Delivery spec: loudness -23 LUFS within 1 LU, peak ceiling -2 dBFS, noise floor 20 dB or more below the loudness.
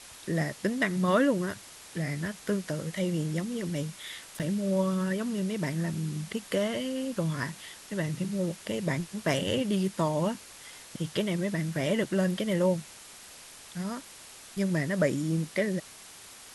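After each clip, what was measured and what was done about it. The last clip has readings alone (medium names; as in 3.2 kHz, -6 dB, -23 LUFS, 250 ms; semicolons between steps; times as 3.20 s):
dropouts 1; longest dropout 7.7 ms; noise floor -49 dBFS; noise floor target -51 dBFS; loudness -30.5 LUFS; peak level -13.0 dBFS; loudness target -23.0 LUFS
-> interpolate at 4.39 s, 7.7 ms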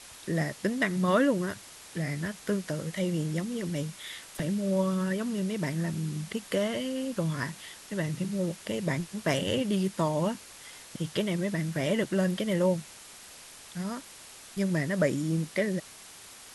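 dropouts 0; noise floor -49 dBFS; noise floor target -51 dBFS
-> noise print and reduce 6 dB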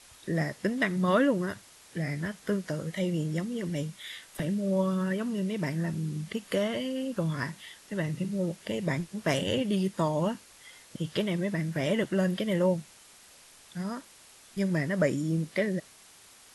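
noise floor -55 dBFS; loudness -30.5 LUFS; peak level -13.0 dBFS; loudness target -23.0 LUFS
-> trim +7.5 dB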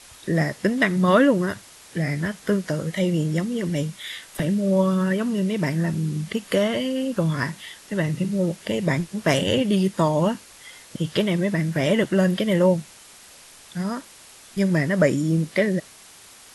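loudness -23.0 LUFS; peak level -5.5 dBFS; noise floor -47 dBFS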